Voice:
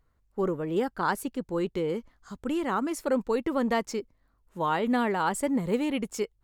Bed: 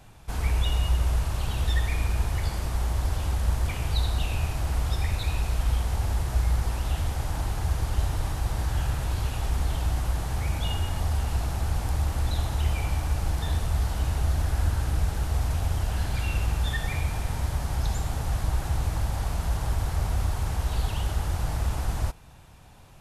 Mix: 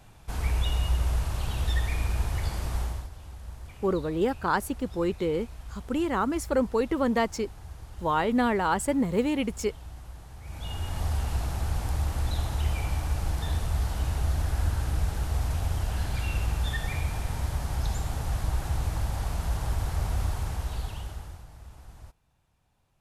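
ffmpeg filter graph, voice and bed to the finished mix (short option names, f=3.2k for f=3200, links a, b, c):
-filter_complex "[0:a]adelay=3450,volume=1.5dB[a];[1:a]volume=12.5dB,afade=t=out:st=2.78:d=0.31:silence=0.188365,afade=t=in:st=10.42:d=0.63:silence=0.188365,afade=t=out:st=20.28:d=1.18:silence=0.125893[b];[a][b]amix=inputs=2:normalize=0"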